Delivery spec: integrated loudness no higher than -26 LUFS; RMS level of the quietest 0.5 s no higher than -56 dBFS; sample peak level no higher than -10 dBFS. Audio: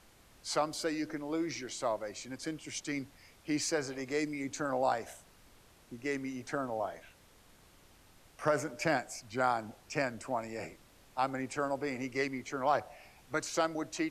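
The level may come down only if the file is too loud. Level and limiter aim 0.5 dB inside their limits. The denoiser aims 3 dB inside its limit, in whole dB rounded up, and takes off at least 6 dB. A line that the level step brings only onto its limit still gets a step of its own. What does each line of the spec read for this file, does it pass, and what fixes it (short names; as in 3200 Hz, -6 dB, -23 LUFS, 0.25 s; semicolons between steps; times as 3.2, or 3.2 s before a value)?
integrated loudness -35.5 LUFS: OK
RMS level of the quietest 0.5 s -61 dBFS: OK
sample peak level -16.0 dBFS: OK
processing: none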